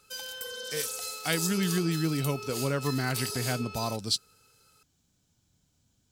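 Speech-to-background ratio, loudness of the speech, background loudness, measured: 4.0 dB, −31.0 LKFS, −35.0 LKFS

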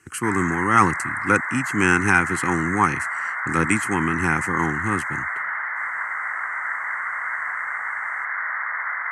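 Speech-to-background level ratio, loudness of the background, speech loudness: 4.0 dB, −26.0 LKFS, −22.0 LKFS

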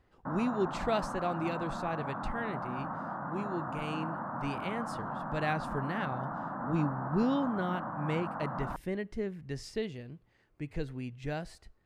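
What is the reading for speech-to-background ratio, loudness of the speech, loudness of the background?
2.5 dB, −36.0 LKFS, −38.5 LKFS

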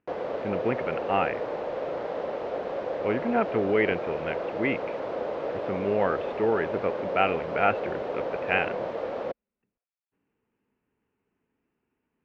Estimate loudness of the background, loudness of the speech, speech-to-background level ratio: −32.0 LKFS, −28.5 LKFS, 3.5 dB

